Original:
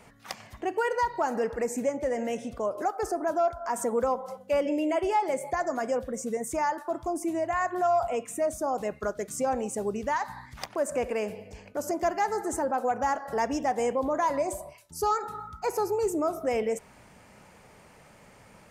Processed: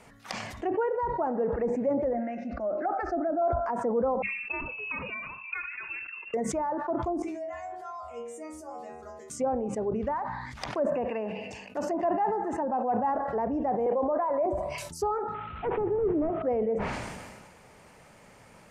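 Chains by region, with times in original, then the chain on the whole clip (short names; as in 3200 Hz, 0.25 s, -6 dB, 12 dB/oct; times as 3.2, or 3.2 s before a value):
2.13–3.42 LPF 4200 Hz 24 dB/oct + fixed phaser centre 670 Hz, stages 8
4.22–6.34 steep high-pass 550 Hz + bell 2500 Hz -6 dB 0.32 oct + inverted band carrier 3200 Hz
7.22–9.3 upward compressor, threshold -38 dBFS + metallic resonator 76 Hz, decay 0.73 s, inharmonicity 0.002 + delay with a stepping band-pass 0.101 s, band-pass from 340 Hz, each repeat 1.4 oct, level -12 dB
10.87–13.12 HPF 170 Hz + bell 2700 Hz +9 dB 0.23 oct + comb 1.1 ms, depth 39%
13.86–14.46 LPF 9200 Hz + three-band isolator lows -16 dB, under 400 Hz, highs -13 dB, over 3500 Hz + fast leveller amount 70%
15.34–16.42 delta modulation 16 kbps, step -40 dBFS + bell 120 Hz +3.5 dB 2.9 oct
whole clip: notches 50/100/150/200 Hz; treble ducked by the level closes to 800 Hz, closed at -25.5 dBFS; sustainer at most 34 dB/s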